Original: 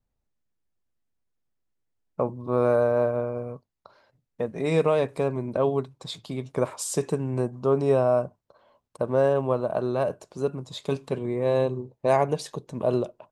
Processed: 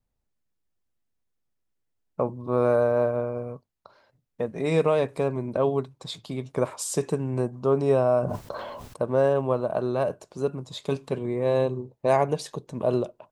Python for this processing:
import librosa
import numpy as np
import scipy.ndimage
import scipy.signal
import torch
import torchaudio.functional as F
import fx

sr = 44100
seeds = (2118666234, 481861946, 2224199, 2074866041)

y = fx.sustainer(x, sr, db_per_s=23.0, at=(8.2, 9.04))